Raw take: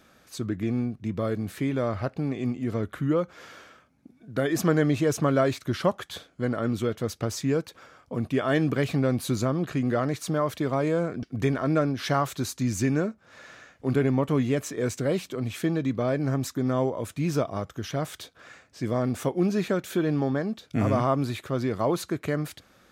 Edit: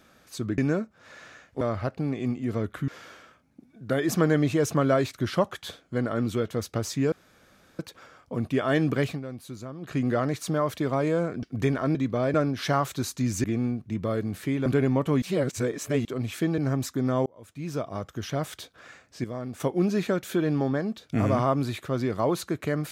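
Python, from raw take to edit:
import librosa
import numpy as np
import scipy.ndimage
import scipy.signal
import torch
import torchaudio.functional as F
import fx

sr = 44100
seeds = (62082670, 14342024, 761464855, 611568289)

y = fx.edit(x, sr, fx.swap(start_s=0.58, length_s=1.22, other_s=12.85, other_length_s=1.03),
    fx.cut(start_s=3.07, length_s=0.28),
    fx.insert_room_tone(at_s=7.59, length_s=0.67),
    fx.fade_down_up(start_s=8.85, length_s=0.91, db=-13.0, fade_s=0.15),
    fx.reverse_span(start_s=14.44, length_s=0.83),
    fx.move(start_s=15.8, length_s=0.39, to_s=11.75),
    fx.fade_in_span(start_s=16.87, length_s=0.93),
    fx.clip_gain(start_s=18.85, length_s=0.36, db=-8.5), tone=tone)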